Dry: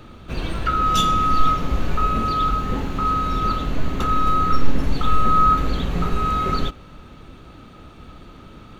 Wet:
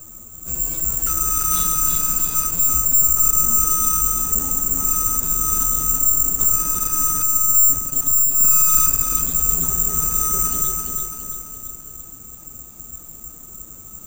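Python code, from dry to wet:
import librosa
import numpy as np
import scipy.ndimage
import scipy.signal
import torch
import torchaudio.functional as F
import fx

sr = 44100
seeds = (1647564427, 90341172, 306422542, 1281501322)

y = fx.lowpass(x, sr, hz=2100.0, slope=6)
y = fx.low_shelf(y, sr, hz=87.0, db=5.5)
y = fx.stretch_vocoder(y, sr, factor=1.6)
y = 10.0 ** (-15.5 / 20.0) * np.tanh(y / 10.0 ** (-15.5 / 20.0))
y = fx.echo_feedback(y, sr, ms=338, feedback_pct=51, wet_db=-4)
y = (np.kron(y[::6], np.eye(6)[0]) * 6)[:len(y)]
y = F.gain(torch.from_numpy(y), -7.5).numpy()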